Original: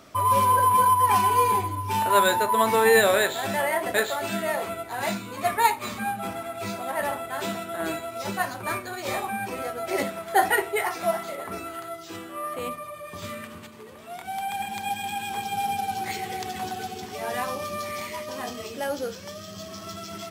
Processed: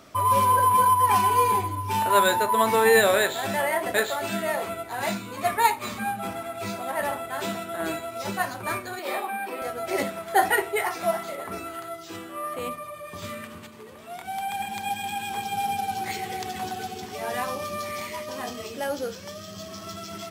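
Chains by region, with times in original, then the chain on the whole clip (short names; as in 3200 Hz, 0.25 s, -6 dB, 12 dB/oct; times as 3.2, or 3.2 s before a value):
8.99–9.62 HPF 260 Hz 24 dB/oct + bell 6400 Hz -13 dB 0.59 oct
whole clip: dry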